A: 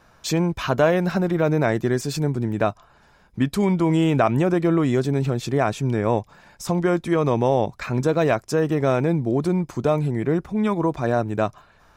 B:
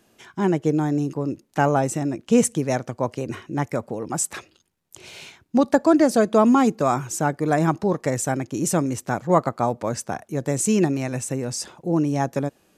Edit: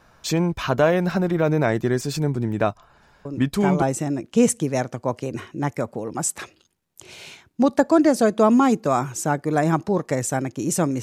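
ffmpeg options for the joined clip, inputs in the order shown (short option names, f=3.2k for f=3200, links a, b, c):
-filter_complex "[1:a]asplit=2[a][b];[0:a]apad=whole_dur=11.02,atrim=end=11.02,atrim=end=3.822[c];[b]atrim=start=1.768:end=8.97[d];[a]atrim=start=1.2:end=1.77,asetpts=PTS-STARTPTS,volume=-6dB,afade=t=in:d=0.004:c=hsin,afade=t=out:st=0.566:d=0.004:c=hsin,adelay=143325S[e];[c][d]acrossfade=d=0.004:c1=hsin:c2=hsin[f];[f][e]amix=inputs=2:normalize=0"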